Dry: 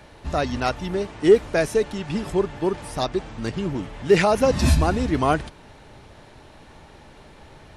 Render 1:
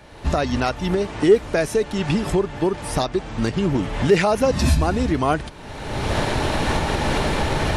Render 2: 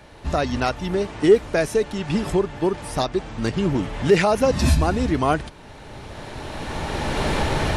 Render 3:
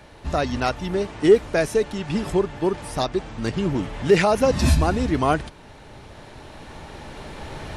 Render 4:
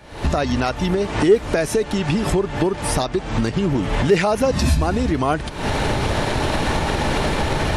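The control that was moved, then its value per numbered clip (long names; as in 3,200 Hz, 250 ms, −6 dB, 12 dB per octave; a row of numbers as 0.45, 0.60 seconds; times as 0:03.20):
camcorder AGC, rising by: 33, 13, 5.2, 83 dB per second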